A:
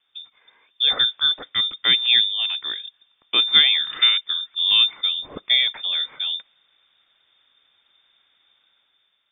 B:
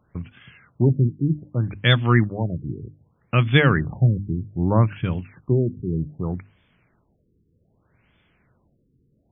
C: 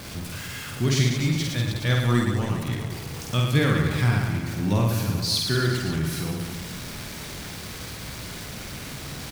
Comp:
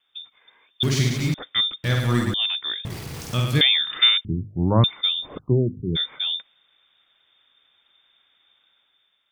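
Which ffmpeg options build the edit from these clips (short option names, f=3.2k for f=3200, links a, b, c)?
-filter_complex "[2:a]asplit=3[a][b][c];[1:a]asplit=2[d][e];[0:a]asplit=6[f][g][h][i][j][k];[f]atrim=end=0.832[l];[a]atrim=start=0.828:end=1.342[m];[g]atrim=start=1.338:end=1.842[n];[b]atrim=start=1.838:end=2.342[o];[h]atrim=start=2.338:end=2.852[p];[c]atrim=start=2.848:end=3.612[q];[i]atrim=start=3.608:end=4.252[r];[d]atrim=start=4.248:end=4.842[s];[j]atrim=start=4.838:end=5.39[t];[e]atrim=start=5.37:end=5.97[u];[k]atrim=start=5.95[v];[l][m]acrossfade=d=0.004:c1=hsin:c2=hsin[w];[w][n]acrossfade=d=0.004:c1=hsin:c2=hsin[x];[x][o]acrossfade=d=0.004:c1=hsin:c2=hsin[y];[y][p]acrossfade=d=0.004:c1=hsin:c2=hsin[z];[z][q]acrossfade=d=0.004:c1=hsin:c2=hsin[aa];[aa][r]acrossfade=d=0.004:c1=hsin:c2=hsin[ab];[ab][s]acrossfade=d=0.004:c1=hsin:c2=hsin[ac];[ac][t]acrossfade=d=0.004:c1=hsin:c2=hsin[ad];[ad][u]acrossfade=d=0.02:c1=tri:c2=tri[ae];[ae][v]acrossfade=d=0.02:c1=tri:c2=tri"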